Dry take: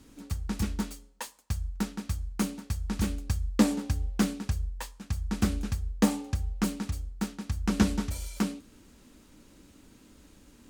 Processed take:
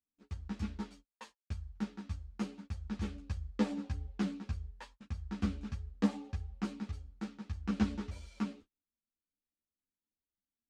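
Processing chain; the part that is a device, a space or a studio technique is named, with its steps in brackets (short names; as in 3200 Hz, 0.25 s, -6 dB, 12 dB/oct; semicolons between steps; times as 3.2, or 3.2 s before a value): gate -43 dBFS, range -38 dB; string-machine ensemble chorus (ensemble effect; LPF 4200 Hz 12 dB/oct); gain -6 dB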